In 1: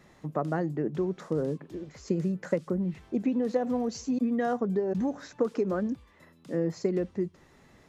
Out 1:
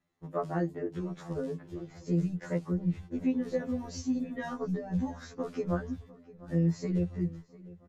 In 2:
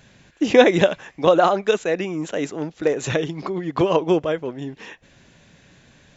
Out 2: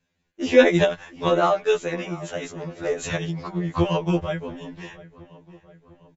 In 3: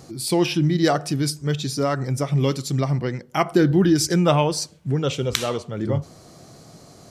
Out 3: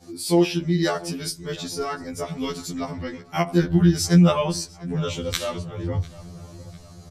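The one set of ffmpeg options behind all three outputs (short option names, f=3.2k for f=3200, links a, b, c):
-filter_complex "[0:a]agate=range=-21dB:threshold=-47dB:ratio=16:detection=peak,asubboost=boost=9.5:cutoff=97,asplit=2[a][b];[b]adelay=700,lowpass=f=3.3k:p=1,volume=-19.5dB,asplit=2[c][d];[d]adelay=700,lowpass=f=3.3k:p=1,volume=0.53,asplit=2[e][f];[f]adelay=700,lowpass=f=3.3k:p=1,volume=0.53,asplit=2[g][h];[h]adelay=700,lowpass=f=3.3k:p=1,volume=0.53[i];[c][e][g][i]amix=inputs=4:normalize=0[j];[a][j]amix=inputs=2:normalize=0,afftfilt=real='re*2*eq(mod(b,4),0)':imag='im*2*eq(mod(b,4),0)':win_size=2048:overlap=0.75"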